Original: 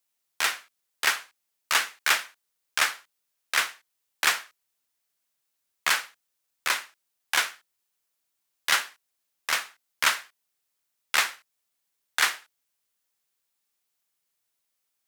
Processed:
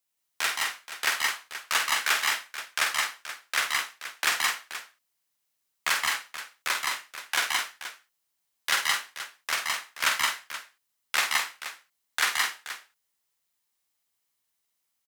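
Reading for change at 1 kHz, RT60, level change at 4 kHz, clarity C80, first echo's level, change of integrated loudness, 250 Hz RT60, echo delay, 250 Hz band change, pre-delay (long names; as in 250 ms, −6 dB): +0.5 dB, no reverb audible, +0.5 dB, no reverb audible, −7.0 dB, −1.0 dB, no reverb audible, 49 ms, 0.0 dB, no reverb audible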